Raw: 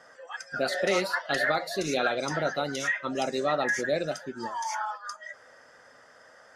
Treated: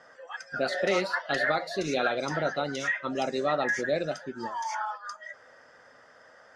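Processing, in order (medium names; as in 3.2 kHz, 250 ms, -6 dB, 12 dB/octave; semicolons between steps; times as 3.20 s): distance through air 69 m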